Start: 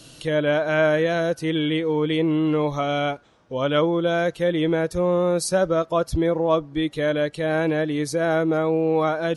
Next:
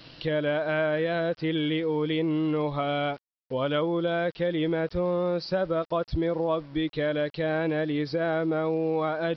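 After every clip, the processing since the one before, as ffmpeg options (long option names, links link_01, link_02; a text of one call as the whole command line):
ffmpeg -i in.wav -af "acompressor=threshold=-26dB:ratio=2.5,aresample=11025,aeval=exprs='val(0)*gte(abs(val(0)),0.00447)':channel_layout=same,aresample=44100" out.wav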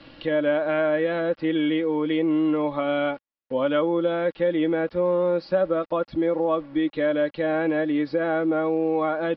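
ffmpeg -i in.wav -filter_complex "[0:a]lowpass=2600,aecho=1:1:3.6:0.51,acrossover=split=140[link_01][link_02];[link_01]acompressor=threshold=-55dB:ratio=6[link_03];[link_03][link_02]amix=inputs=2:normalize=0,volume=2.5dB" out.wav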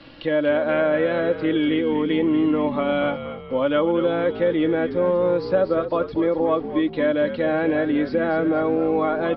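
ffmpeg -i in.wav -filter_complex "[0:a]asplit=6[link_01][link_02][link_03][link_04][link_05][link_06];[link_02]adelay=238,afreqshift=-57,volume=-10.5dB[link_07];[link_03]adelay=476,afreqshift=-114,volume=-17.2dB[link_08];[link_04]adelay=714,afreqshift=-171,volume=-24dB[link_09];[link_05]adelay=952,afreqshift=-228,volume=-30.7dB[link_10];[link_06]adelay=1190,afreqshift=-285,volume=-37.5dB[link_11];[link_01][link_07][link_08][link_09][link_10][link_11]amix=inputs=6:normalize=0,volume=2dB" out.wav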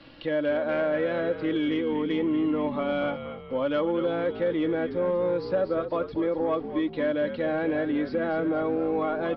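ffmpeg -i in.wav -af "asoftclip=type=tanh:threshold=-10dB,volume=-5dB" out.wav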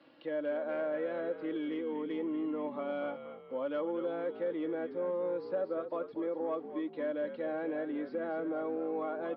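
ffmpeg -i in.wav -af "highpass=290,highshelf=frequency=2100:gain=-11.5,volume=-7dB" out.wav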